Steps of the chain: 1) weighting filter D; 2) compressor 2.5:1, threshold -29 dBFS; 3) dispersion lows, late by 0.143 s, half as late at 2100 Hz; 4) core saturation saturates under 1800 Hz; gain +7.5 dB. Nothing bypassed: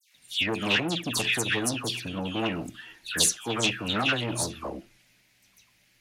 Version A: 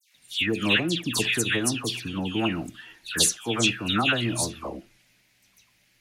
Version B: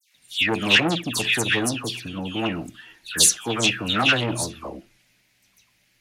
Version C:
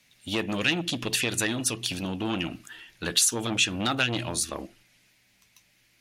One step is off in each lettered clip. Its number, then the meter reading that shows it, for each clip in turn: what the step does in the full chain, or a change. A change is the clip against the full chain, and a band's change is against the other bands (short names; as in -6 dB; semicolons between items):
4, 250 Hz band +2.0 dB; 2, momentary loudness spread change +1 LU; 3, 8 kHz band +2.0 dB